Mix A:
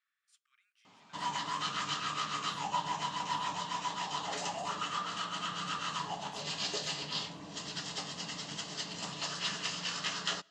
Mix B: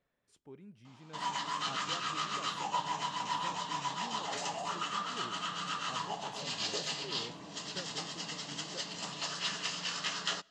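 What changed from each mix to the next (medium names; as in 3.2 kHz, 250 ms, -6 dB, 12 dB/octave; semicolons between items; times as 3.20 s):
speech: remove brick-wall FIR high-pass 1.1 kHz; master: add bass shelf 100 Hz -9.5 dB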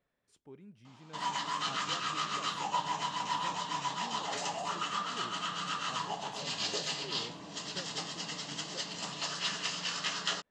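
speech: send off; background: send +9.5 dB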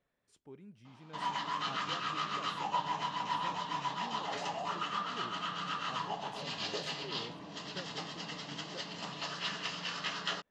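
background: add distance through air 140 m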